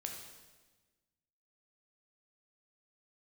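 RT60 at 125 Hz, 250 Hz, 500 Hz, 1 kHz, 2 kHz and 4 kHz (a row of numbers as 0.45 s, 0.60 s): 1.6 s, 1.6 s, 1.4 s, 1.2 s, 1.2 s, 1.2 s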